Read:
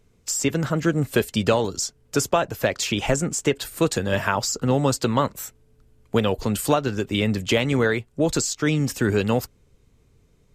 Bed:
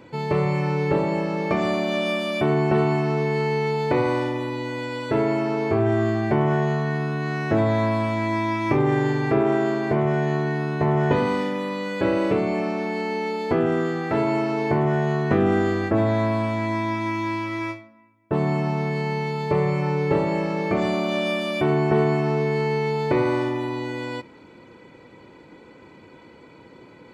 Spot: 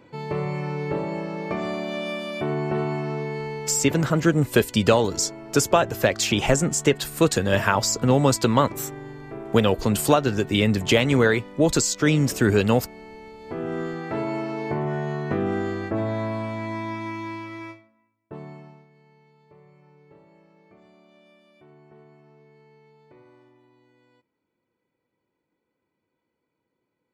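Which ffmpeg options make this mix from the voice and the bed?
ffmpeg -i stem1.wav -i stem2.wav -filter_complex "[0:a]adelay=3400,volume=2dB[link_01];[1:a]volume=5.5dB,afade=type=out:start_time=3.14:duration=0.93:silence=0.281838,afade=type=in:start_time=13.4:duration=0.42:silence=0.281838,afade=type=out:start_time=16.98:duration=1.89:silence=0.0473151[link_02];[link_01][link_02]amix=inputs=2:normalize=0" out.wav

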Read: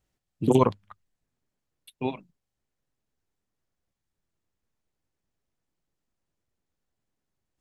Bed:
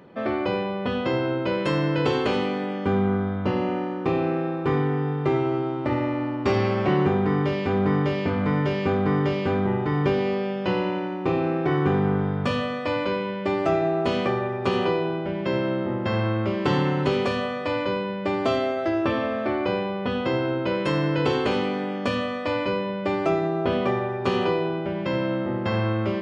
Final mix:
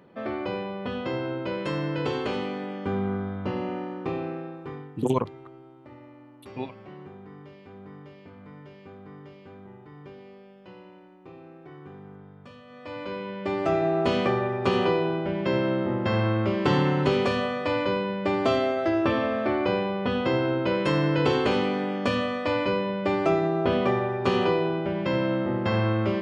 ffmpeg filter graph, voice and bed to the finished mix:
ffmpeg -i stem1.wav -i stem2.wav -filter_complex "[0:a]adelay=4550,volume=-4.5dB[link_01];[1:a]volume=17.5dB,afade=type=out:start_time=3.98:duration=0.96:silence=0.133352,afade=type=in:start_time=12.65:duration=1.38:silence=0.0707946[link_02];[link_01][link_02]amix=inputs=2:normalize=0" out.wav

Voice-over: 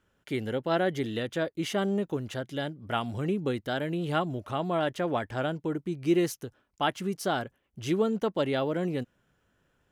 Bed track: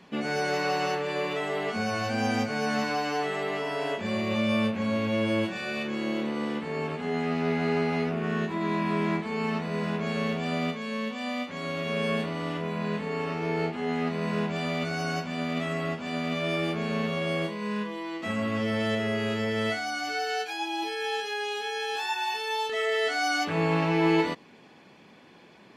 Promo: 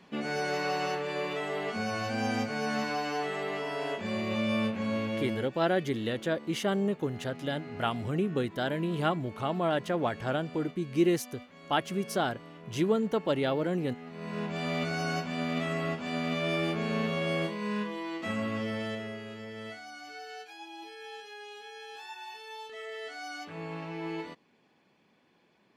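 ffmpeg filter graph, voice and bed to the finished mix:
ffmpeg -i stem1.wav -i stem2.wav -filter_complex "[0:a]adelay=4900,volume=-0.5dB[link_01];[1:a]volume=12dB,afade=type=out:start_time=4.99:duration=0.5:silence=0.211349,afade=type=in:start_time=14.06:duration=0.7:silence=0.16788,afade=type=out:start_time=18.15:duration=1.09:silence=0.237137[link_02];[link_01][link_02]amix=inputs=2:normalize=0" out.wav

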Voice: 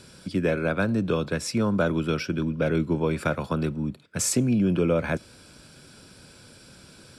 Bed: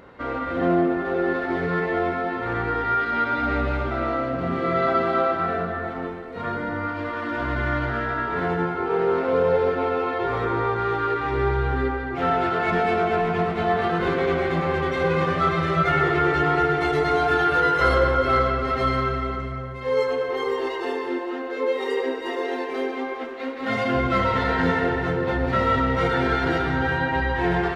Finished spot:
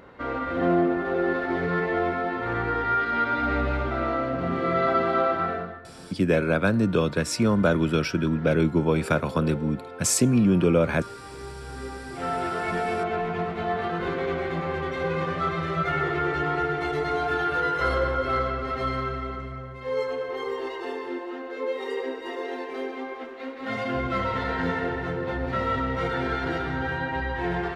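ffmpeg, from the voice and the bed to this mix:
ffmpeg -i stem1.wav -i stem2.wav -filter_complex "[0:a]adelay=5850,volume=2.5dB[link_01];[1:a]volume=10dB,afade=type=out:start_time=5.41:duration=0.41:silence=0.16788,afade=type=in:start_time=11.61:duration=0.85:silence=0.266073[link_02];[link_01][link_02]amix=inputs=2:normalize=0" out.wav

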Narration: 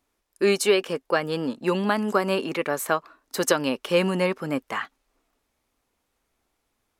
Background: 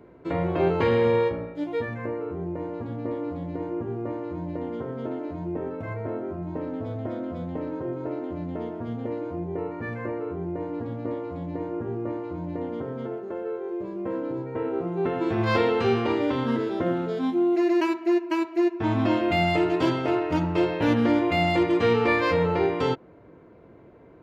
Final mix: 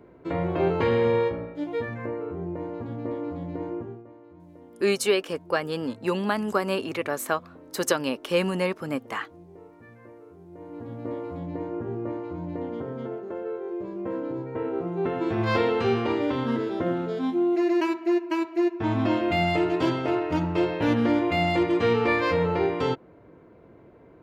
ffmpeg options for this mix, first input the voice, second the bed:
ffmpeg -i stem1.wav -i stem2.wav -filter_complex "[0:a]adelay=4400,volume=-2.5dB[link_01];[1:a]volume=15dB,afade=type=out:start_time=3.7:duration=0.34:silence=0.158489,afade=type=in:start_time=10.48:duration=0.73:silence=0.158489[link_02];[link_01][link_02]amix=inputs=2:normalize=0" out.wav

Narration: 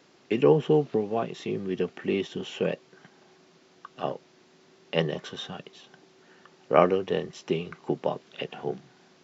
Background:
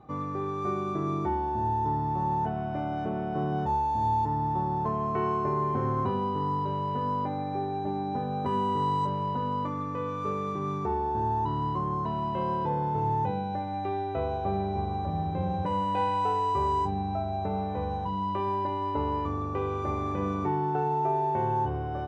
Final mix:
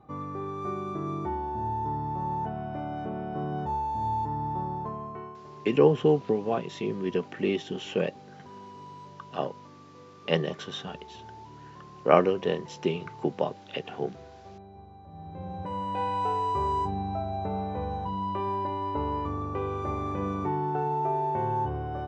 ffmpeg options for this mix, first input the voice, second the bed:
ffmpeg -i stem1.wav -i stem2.wav -filter_complex "[0:a]adelay=5350,volume=0dB[link_01];[1:a]volume=14.5dB,afade=type=out:start_time=4.62:duration=0.75:silence=0.16788,afade=type=in:start_time=15.06:duration=1.2:silence=0.133352[link_02];[link_01][link_02]amix=inputs=2:normalize=0" out.wav

